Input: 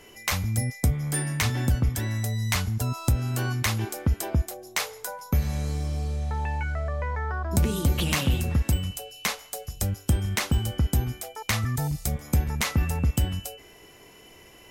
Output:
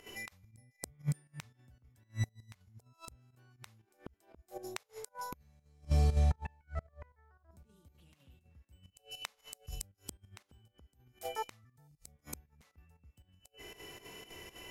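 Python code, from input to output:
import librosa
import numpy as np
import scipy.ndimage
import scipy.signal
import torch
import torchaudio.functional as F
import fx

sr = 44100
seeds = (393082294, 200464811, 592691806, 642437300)

y = fx.gate_flip(x, sr, shuts_db=-21.0, range_db=-38)
y = fx.hpss(y, sr, part='percussive', gain_db=-8)
y = fx.volume_shaper(y, sr, bpm=118, per_beat=2, depth_db=-12, release_ms=62.0, shape='slow start')
y = y * librosa.db_to_amplitude(2.5)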